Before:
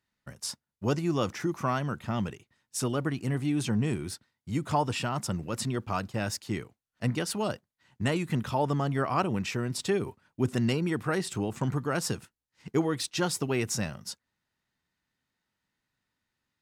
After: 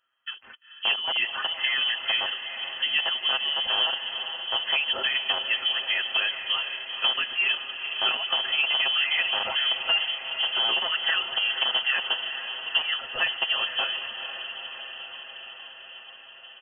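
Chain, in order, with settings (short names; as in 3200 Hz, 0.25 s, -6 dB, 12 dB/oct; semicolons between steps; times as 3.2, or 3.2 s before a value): rattling part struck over -28 dBFS, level -20 dBFS; comb 7.1 ms, depth 96%; compressor, threshold -25 dBFS, peak gain reduction 9 dB; fixed phaser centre 930 Hz, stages 6; on a send: diffused feedback echo 0.465 s, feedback 73%, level -9.5 dB; on the sum: inverted band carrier 3200 Hz; gain +7 dB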